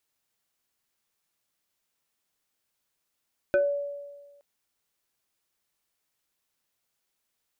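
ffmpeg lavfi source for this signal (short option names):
-f lavfi -i "aevalsrc='0.133*pow(10,-3*t/1.39)*sin(2*PI*571*t+0.89*pow(10,-3*t/0.25)*sin(2*PI*1.64*571*t))':d=0.87:s=44100"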